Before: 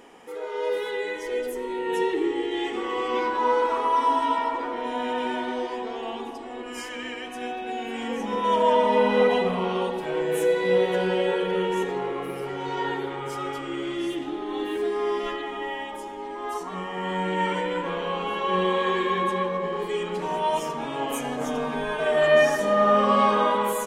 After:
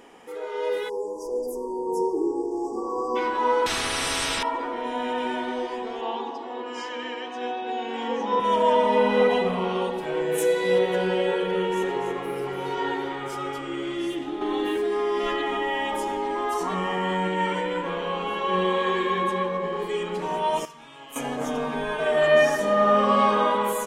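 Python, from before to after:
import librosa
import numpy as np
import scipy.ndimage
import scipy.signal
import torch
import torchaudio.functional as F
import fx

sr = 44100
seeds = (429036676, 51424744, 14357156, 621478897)

y = fx.brickwall_bandstop(x, sr, low_hz=1200.0, high_hz=4600.0, at=(0.88, 3.15), fade=0.02)
y = fx.spectral_comp(y, sr, ratio=10.0, at=(3.66, 4.43))
y = fx.cabinet(y, sr, low_hz=140.0, low_slope=12, high_hz=6200.0, hz=(170.0, 500.0, 940.0, 2300.0, 3600.0), db=(-10, 4, 9, -4, 4), at=(6.01, 8.4))
y = fx.bass_treble(y, sr, bass_db=-2, treble_db=7, at=(10.38, 10.79))
y = fx.echo_single(y, sr, ms=286, db=-7.0, at=(11.55, 13.36))
y = fx.env_flatten(y, sr, amount_pct=70, at=(14.41, 17.28))
y = fx.tone_stack(y, sr, knobs='5-5-5', at=(20.65, 21.16))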